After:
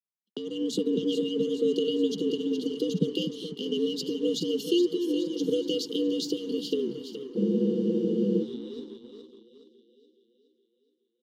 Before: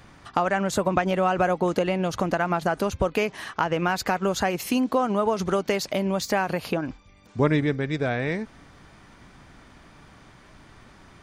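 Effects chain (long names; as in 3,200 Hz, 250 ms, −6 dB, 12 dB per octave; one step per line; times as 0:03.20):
linear-phase brick-wall band-stop 400–2,700 Hz
noise gate −43 dBFS, range −56 dB
low shelf with overshoot 140 Hz +10 dB, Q 1.5
frequency shifter +96 Hz
three-way crossover with the lows and the highs turned down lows −23 dB, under 250 Hz, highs −16 dB, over 4,300 Hz
on a send: echo with a time of its own for lows and highs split 340 Hz, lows 249 ms, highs 420 ms, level −9 dB
on the sum: automatic gain control gain up to 6 dB
in parallel at −7 dB: dead-zone distortion −45 dBFS
on the sum: frozen spectrum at 0:07.38, 1.03 s
level −5 dB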